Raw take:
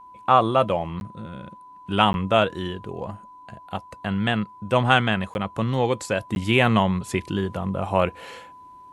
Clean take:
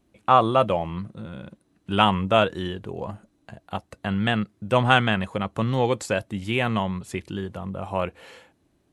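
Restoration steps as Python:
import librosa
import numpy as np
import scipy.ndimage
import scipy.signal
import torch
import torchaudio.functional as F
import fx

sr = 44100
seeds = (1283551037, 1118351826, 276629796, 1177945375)

y = fx.notch(x, sr, hz=1000.0, q=30.0)
y = fx.fix_interpolate(y, sr, at_s=(1.0, 2.13, 5.34, 6.35), length_ms=11.0)
y = fx.gain(y, sr, db=fx.steps((0.0, 0.0), (6.29, -5.5)))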